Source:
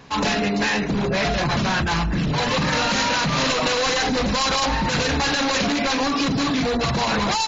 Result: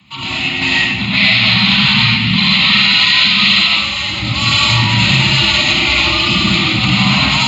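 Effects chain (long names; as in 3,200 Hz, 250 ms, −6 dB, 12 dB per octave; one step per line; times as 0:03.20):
0:00.99–0:03.67: octave-band graphic EQ 125/1,000/2,000/4,000 Hz +6/+5/+8/+12 dB
automatic gain control gain up to 10 dB
phaser with its sweep stopped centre 1,600 Hz, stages 6
frequency shifter +60 Hz
flat-topped bell 560 Hz −13 dB 2.6 octaves
convolution reverb RT60 0.90 s, pre-delay 40 ms, DRR −4.5 dB
brickwall limiter −4.5 dBFS, peak gain reduction 4.5 dB
level +3.5 dB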